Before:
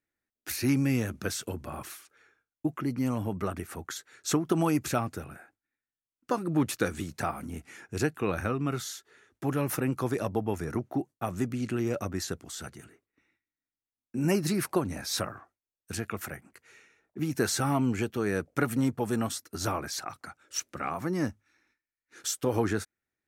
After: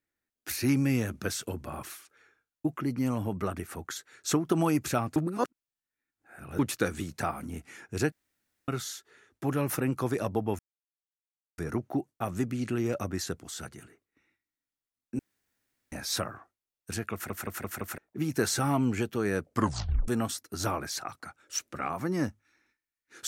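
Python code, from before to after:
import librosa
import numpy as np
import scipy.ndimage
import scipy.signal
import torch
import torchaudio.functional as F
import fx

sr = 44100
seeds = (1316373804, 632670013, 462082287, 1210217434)

y = fx.edit(x, sr, fx.reverse_span(start_s=5.16, length_s=1.43),
    fx.room_tone_fill(start_s=8.12, length_s=0.56),
    fx.insert_silence(at_s=10.59, length_s=0.99),
    fx.room_tone_fill(start_s=14.2, length_s=0.73),
    fx.stutter_over(start_s=16.14, slice_s=0.17, count=5),
    fx.tape_stop(start_s=18.5, length_s=0.59), tone=tone)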